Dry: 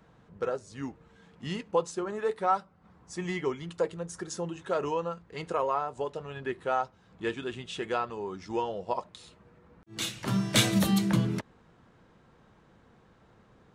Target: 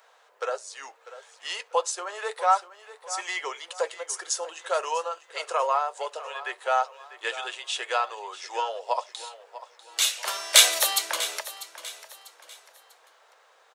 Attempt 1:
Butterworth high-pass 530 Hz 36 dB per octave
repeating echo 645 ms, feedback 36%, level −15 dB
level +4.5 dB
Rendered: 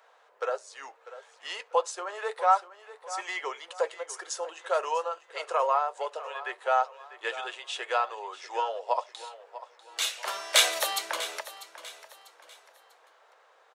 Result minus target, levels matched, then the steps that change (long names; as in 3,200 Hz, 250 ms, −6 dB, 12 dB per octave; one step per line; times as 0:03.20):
8,000 Hz band −4.5 dB
add after Butterworth high-pass: high-shelf EQ 3,200 Hz +9.5 dB